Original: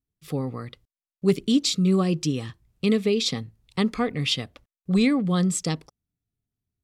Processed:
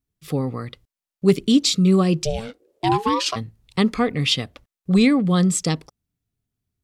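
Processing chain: 2.24–3.35 s: ring modulator 280 Hz -> 890 Hz; trim +4.5 dB

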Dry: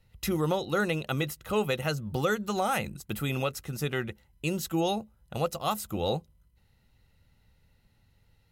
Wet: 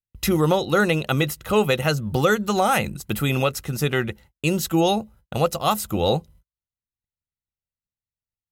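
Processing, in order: gate -55 dBFS, range -43 dB; trim +8.5 dB

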